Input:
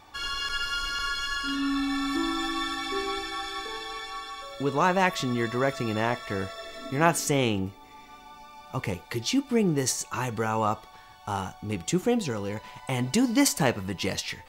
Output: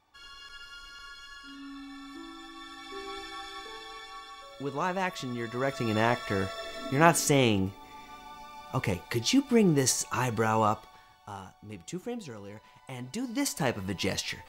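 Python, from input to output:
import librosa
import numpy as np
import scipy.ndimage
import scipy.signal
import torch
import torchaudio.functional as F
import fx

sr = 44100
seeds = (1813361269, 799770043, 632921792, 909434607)

y = fx.gain(x, sr, db=fx.line((2.53, -16.5), (3.22, -7.5), (5.46, -7.5), (5.96, 1.0), (10.62, 1.0), (11.39, -12.0), (13.17, -12.0), (13.92, -1.0)))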